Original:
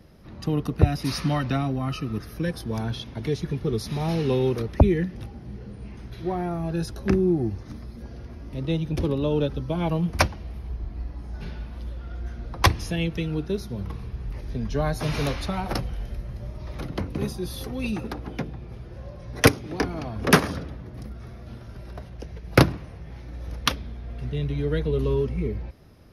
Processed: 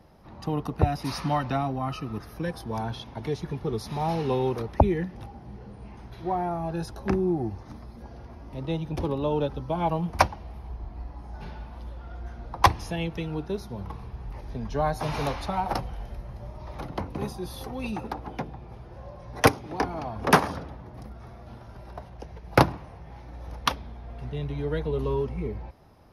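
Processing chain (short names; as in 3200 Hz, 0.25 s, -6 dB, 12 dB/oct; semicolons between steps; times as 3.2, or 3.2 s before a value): bell 860 Hz +12 dB 0.91 oct; gain -5 dB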